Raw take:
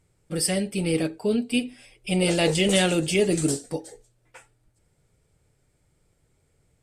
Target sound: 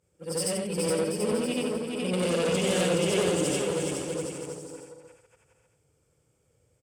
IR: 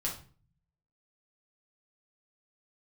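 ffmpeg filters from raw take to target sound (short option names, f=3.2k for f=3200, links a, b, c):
-filter_complex "[0:a]afftfilt=real='re':imag='-im':win_size=8192:overlap=0.75,equalizer=f=500:t=o:w=0.33:g=10,equalizer=f=2k:t=o:w=0.33:g=-6,equalizer=f=4k:t=o:w=0.33:g=-10,equalizer=f=10k:t=o:w=0.33:g=-3,asplit=2[a][b];[b]aecho=0:1:92|184:0.0891|0.0285[c];[a][c]amix=inputs=2:normalize=0,aeval=exprs='(tanh(14.1*val(0)+0.3)-tanh(0.3))/14.1':c=same,highpass=f=58:w=0.5412,highpass=f=58:w=1.3066,equalizer=f=5.8k:t=o:w=3:g=4.5,asplit=2[d][e];[e]aecho=0:1:420|735|971.2|1148|1281:0.631|0.398|0.251|0.158|0.1[f];[d][f]amix=inputs=2:normalize=0"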